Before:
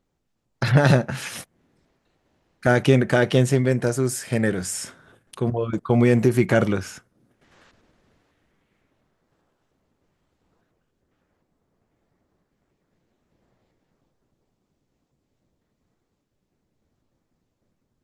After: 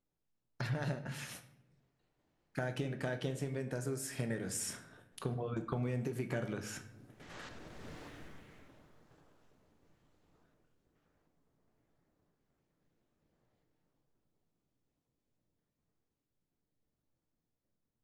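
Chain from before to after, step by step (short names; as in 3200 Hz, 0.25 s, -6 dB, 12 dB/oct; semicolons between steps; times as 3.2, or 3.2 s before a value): Doppler pass-by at 8.07, 10 m/s, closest 2.5 m; compressor 12:1, threshold -49 dBFS, peak gain reduction 19.5 dB; shoebox room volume 190 m³, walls mixed, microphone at 0.41 m; gain +15 dB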